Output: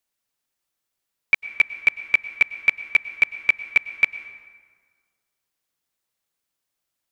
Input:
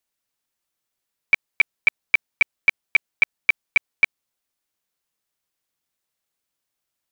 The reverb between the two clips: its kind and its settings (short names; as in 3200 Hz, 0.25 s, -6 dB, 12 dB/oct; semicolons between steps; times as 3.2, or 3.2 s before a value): plate-style reverb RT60 1.7 s, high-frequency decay 0.6×, pre-delay 90 ms, DRR 13.5 dB